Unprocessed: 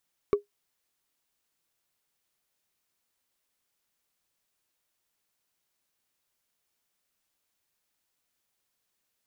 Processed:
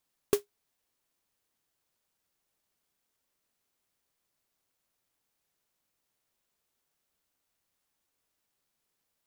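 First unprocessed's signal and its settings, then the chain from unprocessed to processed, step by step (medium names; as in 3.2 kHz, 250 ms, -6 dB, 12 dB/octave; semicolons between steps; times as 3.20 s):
wood hit, lowest mode 409 Hz, decay 0.13 s, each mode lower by 10 dB, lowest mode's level -14.5 dB
sampling jitter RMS 0.14 ms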